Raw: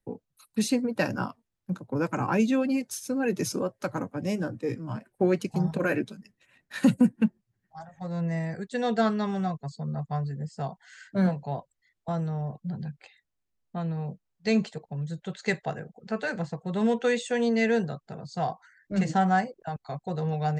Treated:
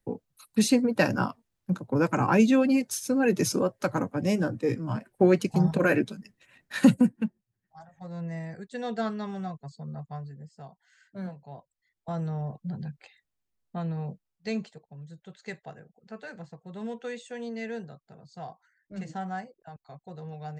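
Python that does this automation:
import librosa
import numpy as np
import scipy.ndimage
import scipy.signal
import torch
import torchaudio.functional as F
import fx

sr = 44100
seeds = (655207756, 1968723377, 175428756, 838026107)

y = fx.gain(x, sr, db=fx.line((6.84, 3.5), (7.27, -6.0), (9.96, -6.0), (10.65, -13.0), (11.45, -13.0), (12.26, -1.0), (14.1, -1.0), (14.83, -11.5)))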